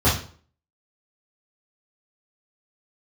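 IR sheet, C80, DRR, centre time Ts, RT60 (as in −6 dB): 11.5 dB, −10.5 dB, 34 ms, 0.45 s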